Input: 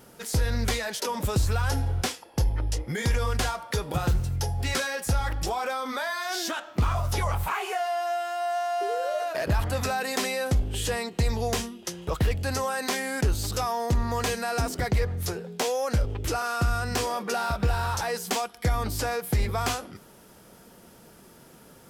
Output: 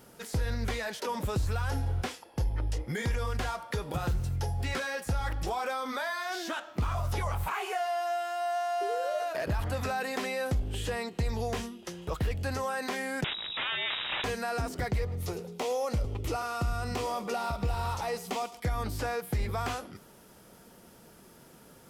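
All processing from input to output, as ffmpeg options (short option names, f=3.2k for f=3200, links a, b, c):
-filter_complex "[0:a]asettb=1/sr,asplit=3[a][b][c];[a]atrim=end=13.244[d];[b]atrim=start=13.24:end=14.24,asetpts=PTS-STARTPTS,afade=t=in:d=0.004:c=qsin,afade=t=out:st=0.996:d=0.004:c=qsin,equalizer=f=530:w=1.9:g=9.5,aeval=exprs='(mod(11.2*val(0)+1,2)-1)/11.2':c=same,lowpass=f=3.3k:t=q:w=0.5098,lowpass=f=3.3k:t=q:w=0.6013,lowpass=f=3.3k:t=q:w=0.9,lowpass=f=3.3k:t=q:w=2.563,afreqshift=-3900[e];[c]atrim=start=14.236[f];[d][e]acrossfade=d=0.004:c1=hsin:c2=qsin[g];[g][f]acrossfade=d=0.004:c1=qsin:c2=hsin,asettb=1/sr,asplit=3[h][i][j];[h]atrim=end=15.014[k];[i]atrim=start=15.01:end=18.6,asetpts=PTS-STARTPTS,afade=t=in:d=0.004:c=qsin,afade=t=out:st=3.586:d=0.004:c=qsin,equalizer=f=1.6k:w=6.8:g=-14,aecho=1:1:107|214|321:0.126|0.0516|0.0212,atrim=end_sample=158319[l];[j]atrim=start=18.596[m];[k][l]acrossfade=d=0.004:c1=hsin:c2=qsin[n];[n][m]acrossfade=d=0.004:c1=qsin:c2=hsin,acrossover=split=3200[o][p];[p]acompressor=threshold=-39dB:ratio=4:attack=1:release=60[q];[o][q]amix=inputs=2:normalize=0,alimiter=limit=-19.5dB:level=0:latency=1:release=99,volume=-3dB"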